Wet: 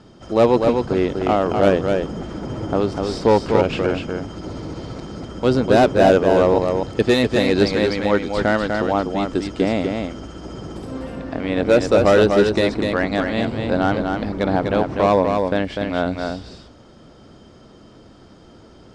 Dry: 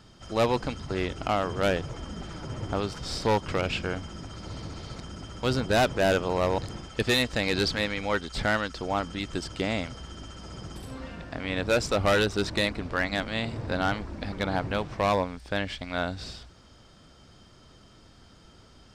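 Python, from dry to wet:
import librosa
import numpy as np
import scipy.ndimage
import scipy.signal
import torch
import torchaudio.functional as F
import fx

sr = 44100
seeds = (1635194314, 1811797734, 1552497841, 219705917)

y = scipy.signal.sosfilt(scipy.signal.butter(2, 9500.0, 'lowpass', fs=sr, output='sos'), x)
y = fx.peak_eq(y, sr, hz=360.0, db=12.0, octaves=2.9)
y = y + 10.0 ** (-4.5 / 20.0) * np.pad(y, (int(248 * sr / 1000.0), 0))[:len(y)]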